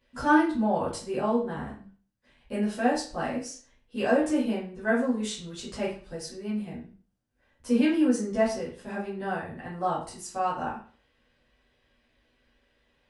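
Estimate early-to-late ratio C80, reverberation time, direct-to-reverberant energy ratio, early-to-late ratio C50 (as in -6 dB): 10.5 dB, 0.40 s, -10.5 dB, 5.5 dB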